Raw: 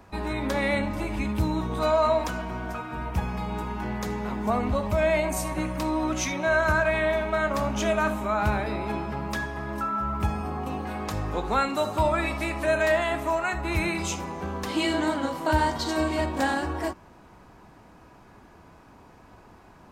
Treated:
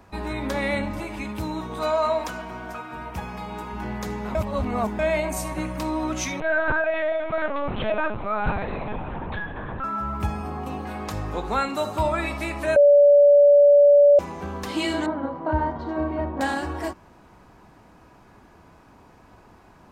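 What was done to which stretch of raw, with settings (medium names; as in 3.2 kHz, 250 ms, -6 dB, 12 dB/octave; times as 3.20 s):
1.00–3.73 s: bass shelf 190 Hz -9 dB
4.35–4.99 s: reverse
6.40–9.84 s: LPC vocoder at 8 kHz pitch kept
12.76–14.19 s: bleep 576 Hz -10 dBFS
15.06–16.41 s: low-pass 1.2 kHz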